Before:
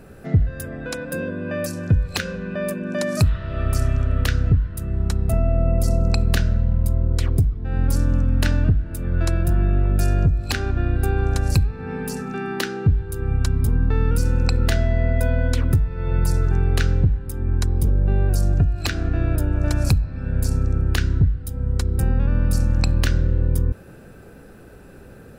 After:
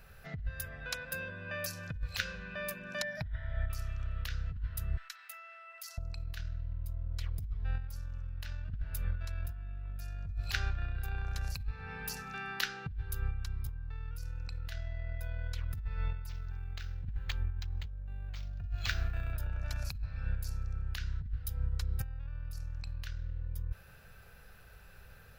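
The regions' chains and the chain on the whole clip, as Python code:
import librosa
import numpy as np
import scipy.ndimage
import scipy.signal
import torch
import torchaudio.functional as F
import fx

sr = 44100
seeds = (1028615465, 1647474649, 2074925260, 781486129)

y = fx.chain(x, sr, fx.savgol(points=25),
    fx.fixed_phaser(hz=1800.0, stages=8), at=(3.02, 3.7))
y = fx.chain(y, sr, fx.ladder_highpass(hz=1300.0, resonance_pct=35),
    fx.env_flatten(amount_pct=50), at=(4.97, 5.98))
y = fx.chain(y, sr, fx.high_shelf(hz=4700.0, db=6.5),
    fx.resample_linear(factor=4), at=(16.29, 19.33))
y = fx.tone_stack(y, sr, knobs='10-0-10')
y = fx.over_compress(y, sr, threshold_db=-29.0, ratio=-0.5)
y = fx.peak_eq(y, sr, hz=8600.0, db=-12.5, octaves=0.68)
y = y * 10.0 ** (-5.0 / 20.0)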